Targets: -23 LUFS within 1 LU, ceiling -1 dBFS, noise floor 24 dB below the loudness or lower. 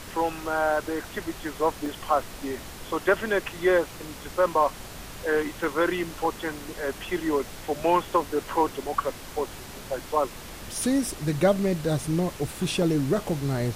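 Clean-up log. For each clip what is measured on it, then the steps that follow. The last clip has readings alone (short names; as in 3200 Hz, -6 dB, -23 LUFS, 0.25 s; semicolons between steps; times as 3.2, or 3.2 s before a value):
dropouts 6; longest dropout 1.7 ms; noise floor -41 dBFS; noise floor target -51 dBFS; loudness -27.0 LUFS; peak -8.0 dBFS; loudness target -23.0 LUFS
-> interpolate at 1.86/5.64/6.25/11.11/12.04/12.82, 1.7 ms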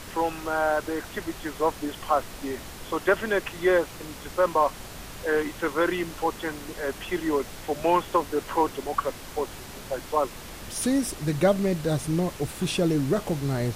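dropouts 0; noise floor -41 dBFS; noise floor target -51 dBFS
-> noise print and reduce 10 dB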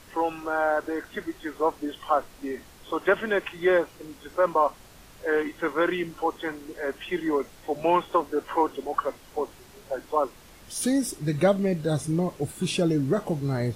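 noise floor -51 dBFS; loudness -27.0 LUFS; peak -8.0 dBFS; loudness target -23.0 LUFS
-> gain +4 dB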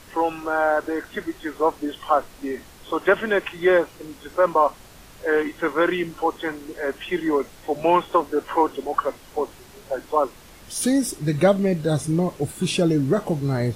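loudness -23.0 LUFS; peak -4.5 dBFS; noise floor -47 dBFS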